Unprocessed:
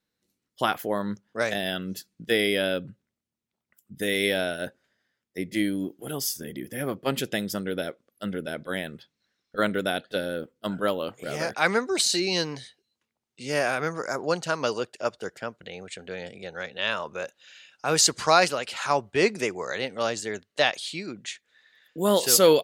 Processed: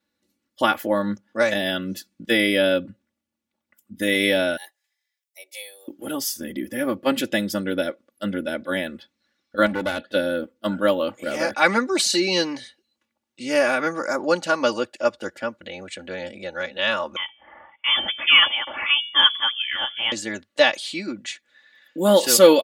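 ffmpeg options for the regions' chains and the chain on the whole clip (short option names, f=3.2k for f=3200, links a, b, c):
-filter_complex "[0:a]asettb=1/sr,asplit=3[a][b][c];[a]atrim=end=4.574[d];[b]atrim=start=4.57:end=5.88,asetpts=PTS-STARTPTS,afade=t=in:d=0.004:c=qsin,afade=t=out:st=1.306:d=0.004:c=qsin,aderivative,afreqshift=200[e];[c]atrim=start=5.876[f];[d][e]acrossfade=d=0.004:c1=hsin:c2=qsin[g];[g][f]acrossfade=d=0.004:c1=qsin:c2=hsin,asettb=1/sr,asplit=3[h][i][j];[h]atrim=end=9.664[k];[i]atrim=start=9.66:end=10.12,asetpts=PTS-STARTPTS,afade=t=in:d=0.004:c=qsin,afade=t=out:st=0.456:d=0.004:c=qsin,highpass=44,highshelf=f=6.2k:g=-6.5,aeval=exprs='clip(val(0),-1,0.0251)':c=same[l];[j]atrim=start=10.116[m];[k][l]acrossfade=d=0.004:c1=hsin:c2=qsin[n];[n][m]acrossfade=d=0.004:c1=qsin:c2=hsin,asettb=1/sr,asplit=3[o][p][q];[o]atrim=end=17.164[r];[p]atrim=start=17.16:end=20.12,asetpts=PTS-STARTPTS,afade=t=in:d=0.004:c=qsin,afade=t=out:st=2.956:d=0.004:c=qsin,bandreject=f=119:t=h:w=4,bandreject=f=238:t=h:w=4,bandreject=f=357:t=h:w=4,bandreject=f=476:t=h:w=4,bandreject=f=595:t=h:w=4,bandreject=f=714:t=h:w=4,bandreject=f=833:t=h:w=4,bandreject=f=952:t=h:w=4,bandreject=f=1.071k:t=h:w=4,bandreject=f=1.19k:t=h:w=4,bandreject=f=1.309k:t=h:w=4,lowpass=f=3.1k:t=q:w=0.5098,lowpass=f=3.1k:t=q:w=0.6013,lowpass=f=3.1k:t=q:w=0.9,lowpass=f=3.1k:t=q:w=2.563,afreqshift=-3600[s];[q]atrim=start=20.116[t];[r][s]acrossfade=d=0.004:c1=hsin:c2=qsin[u];[u][t]acrossfade=d=0.004:c1=qsin:c2=hsin,highpass=77,bass=f=250:g=1,treble=f=4k:g=-4,aecho=1:1:3.5:0.87,volume=3dB"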